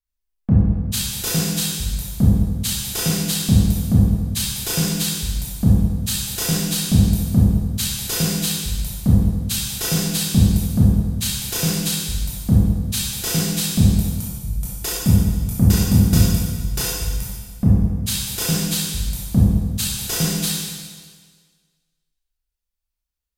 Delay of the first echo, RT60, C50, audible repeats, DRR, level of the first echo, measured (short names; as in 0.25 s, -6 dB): none, 1.6 s, -2.0 dB, none, -6.5 dB, none